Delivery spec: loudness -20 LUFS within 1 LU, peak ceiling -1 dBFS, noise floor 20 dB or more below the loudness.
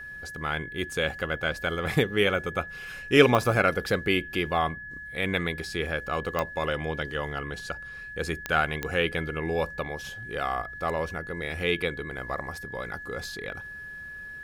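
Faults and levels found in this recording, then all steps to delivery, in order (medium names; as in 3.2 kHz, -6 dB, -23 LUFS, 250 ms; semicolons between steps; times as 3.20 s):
clicks found 4; steady tone 1.7 kHz; tone level -38 dBFS; loudness -28.5 LUFS; peak level -4.5 dBFS; loudness target -20.0 LUFS
-> de-click; band-stop 1.7 kHz, Q 30; trim +8.5 dB; peak limiter -1 dBFS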